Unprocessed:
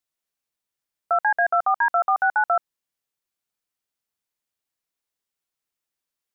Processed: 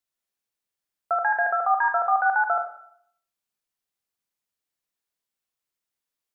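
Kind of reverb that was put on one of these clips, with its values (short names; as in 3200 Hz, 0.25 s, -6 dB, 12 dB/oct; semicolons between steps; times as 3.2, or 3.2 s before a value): Schroeder reverb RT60 0.65 s, combs from 31 ms, DRR 4.5 dB; gain -2.5 dB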